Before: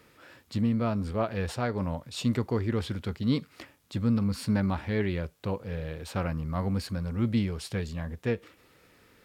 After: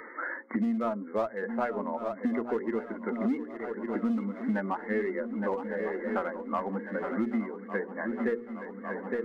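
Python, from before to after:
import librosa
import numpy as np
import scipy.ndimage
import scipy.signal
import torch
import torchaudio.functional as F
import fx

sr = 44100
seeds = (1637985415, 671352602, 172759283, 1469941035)

p1 = fx.bin_expand(x, sr, power=1.5)
p2 = fx.brickwall_bandpass(p1, sr, low_hz=210.0, high_hz=2200.0)
p3 = np.clip(p2, -10.0 ** (-33.0 / 20.0), 10.0 ** (-33.0 / 20.0))
p4 = p2 + (p3 * 10.0 ** (-6.0 / 20.0))
p5 = fx.hum_notches(p4, sr, base_hz=60, count=9)
p6 = p5 + fx.echo_swing(p5, sr, ms=1153, ratio=3, feedback_pct=47, wet_db=-13, dry=0)
p7 = fx.band_squash(p6, sr, depth_pct=100)
y = p7 * 10.0 ** (2.0 / 20.0)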